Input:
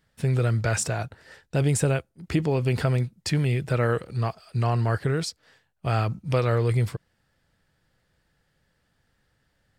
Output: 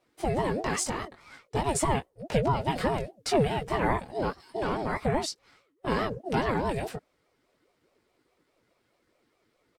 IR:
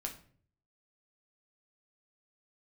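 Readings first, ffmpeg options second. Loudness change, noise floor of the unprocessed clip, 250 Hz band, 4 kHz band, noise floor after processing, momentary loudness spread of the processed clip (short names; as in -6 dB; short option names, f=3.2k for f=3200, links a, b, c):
-4.0 dB, -71 dBFS, -2.0 dB, -0.5 dB, -73 dBFS, 9 LU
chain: -af "aecho=1:1:5.1:0.65,flanger=delay=17:depth=3.8:speed=0.49,aeval=exprs='val(0)*sin(2*PI*420*n/s+420*0.35/4.8*sin(2*PI*4.8*n/s))':c=same,volume=2.5dB"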